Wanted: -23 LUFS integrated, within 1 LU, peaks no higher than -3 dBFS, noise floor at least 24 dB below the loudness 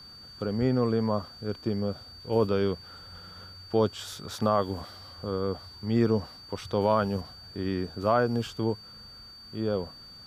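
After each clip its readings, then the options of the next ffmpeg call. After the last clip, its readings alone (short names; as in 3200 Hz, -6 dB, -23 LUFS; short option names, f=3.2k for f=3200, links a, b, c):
steady tone 4600 Hz; tone level -46 dBFS; loudness -29.0 LUFS; peak -11.5 dBFS; loudness target -23.0 LUFS
-> -af "bandreject=f=4.6k:w=30"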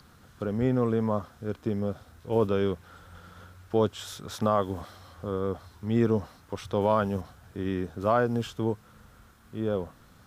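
steady tone none; loudness -29.0 LUFS; peak -12.0 dBFS; loudness target -23.0 LUFS
-> -af "volume=6dB"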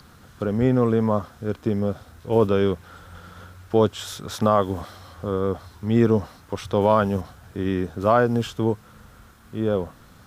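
loudness -23.0 LUFS; peak -6.0 dBFS; noise floor -50 dBFS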